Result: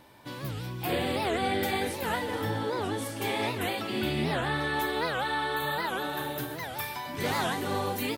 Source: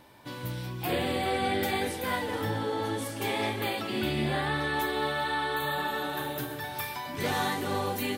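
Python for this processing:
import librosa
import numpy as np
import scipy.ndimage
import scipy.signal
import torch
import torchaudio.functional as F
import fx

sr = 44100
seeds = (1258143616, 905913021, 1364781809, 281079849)

y = fx.record_warp(x, sr, rpm=78.0, depth_cents=250.0)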